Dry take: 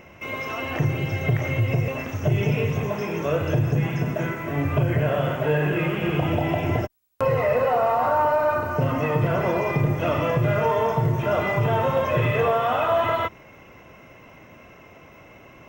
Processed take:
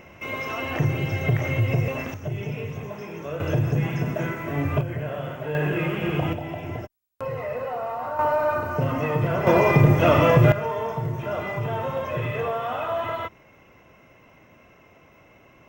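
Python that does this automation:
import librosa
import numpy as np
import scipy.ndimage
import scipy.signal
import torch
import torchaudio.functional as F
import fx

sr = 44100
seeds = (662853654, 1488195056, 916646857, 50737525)

y = fx.gain(x, sr, db=fx.steps((0.0, 0.0), (2.14, -8.5), (3.4, -1.0), (4.81, -8.0), (5.55, -1.5), (6.33, -9.0), (8.19, -1.5), (9.47, 6.0), (10.52, -6.0)))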